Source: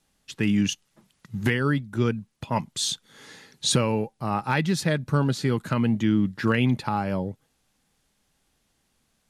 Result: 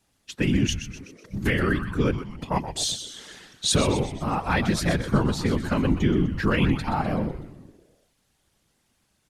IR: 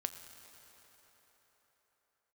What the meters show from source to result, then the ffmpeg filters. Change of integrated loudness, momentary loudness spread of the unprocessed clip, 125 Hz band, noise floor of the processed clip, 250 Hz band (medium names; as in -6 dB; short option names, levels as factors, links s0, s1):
+0.5 dB, 7 LU, 0.0 dB, -70 dBFS, 0.0 dB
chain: -filter_complex "[0:a]asplit=7[s0][s1][s2][s3][s4][s5][s6];[s1]adelay=125,afreqshift=-120,volume=0.316[s7];[s2]adelay=250,afreqshift=-240,volume=0.164[s8];[s3]adelay=375,afreqshift=-360,volume=0.0851[s9];[s4]adelay=500,afreqshift=-480,volume=0.0447[s10];[s5]adelay=625,afreqshift=-600,volume=0.0232[s11];[s6]adelay=750,afreqshift=-720,volume=0.012[s12];[s0][s7][s8][s9][s10][s11][s12]amix=inputs=7:normalize=0,afftfilt=real='hypot(re,im)*cos(2*PI*random(0))':imag='hypot(re,im)*sin(2*PI*random(1))':win_size=512:overlap=0.75,volume=2.11"